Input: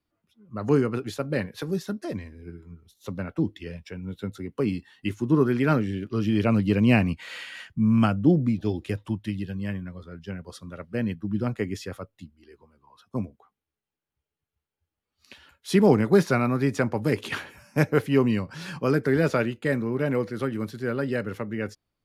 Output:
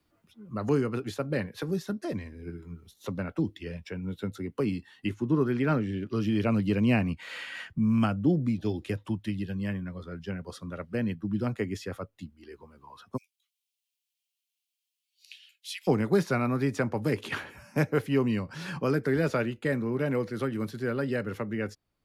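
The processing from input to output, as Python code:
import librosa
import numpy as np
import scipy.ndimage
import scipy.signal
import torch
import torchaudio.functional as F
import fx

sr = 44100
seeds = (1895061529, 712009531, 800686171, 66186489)

y = fx.high_shelf(x, sr, hz=5300.0, db=-8.5, at=(5.11, 6.09))
y = fx.steep_highpass(y, sr, hz=2600.0, slope=36, at=(13.16, 15.87), fade=0.02)
y = fx.band_squash(y, sr, depth_pct=40)
y = F.gain(torch.from_numpy(y), -3.5).numpy()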